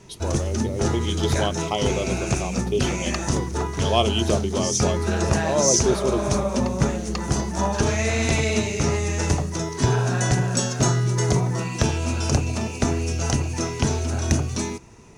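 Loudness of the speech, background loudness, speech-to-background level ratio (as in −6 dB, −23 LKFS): −27.0 LKFS, −23.5 LKFS, −3.5 dB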